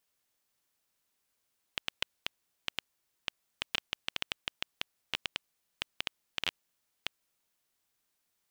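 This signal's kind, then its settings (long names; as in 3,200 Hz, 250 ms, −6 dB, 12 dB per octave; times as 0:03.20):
Geiger counter clicks 6.1 per second −12.5 dBFS 5.46 s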